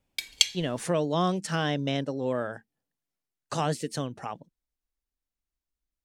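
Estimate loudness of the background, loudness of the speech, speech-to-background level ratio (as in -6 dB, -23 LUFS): -26.0 LUFS, -30.0 LUFS, -4.0 dB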